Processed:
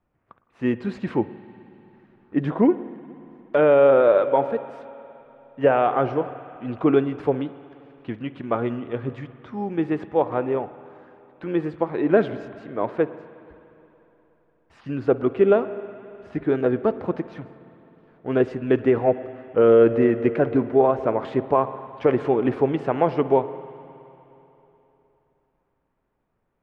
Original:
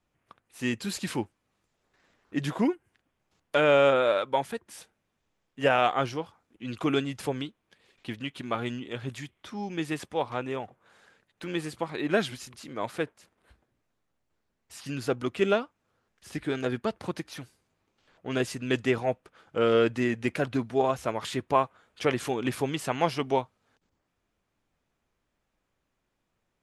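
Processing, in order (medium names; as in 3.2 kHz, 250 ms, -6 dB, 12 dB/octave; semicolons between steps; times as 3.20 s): reverberation RT60 3.4 s, pre-delay 52 ms, DRR 13 dB; dynamic bell 430 Hz, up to +6 dB, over -39 dBFS, Q 1; peak limiter -11 dBFS, peak gain reduction 4.5 dB; low-pass 1.5 kHz 12 dB/octave; trim +4.5 dB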